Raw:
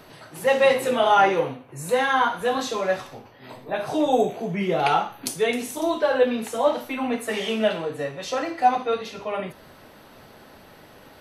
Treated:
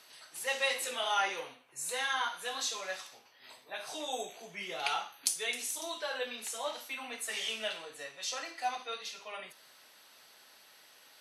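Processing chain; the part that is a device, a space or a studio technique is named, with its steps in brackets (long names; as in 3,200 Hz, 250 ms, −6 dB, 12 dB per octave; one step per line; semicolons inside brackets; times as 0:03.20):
piezo pickup straight into a mixer (low-pass filter 8,100 Hz 12 dB per octave; first difference)
level +3 dB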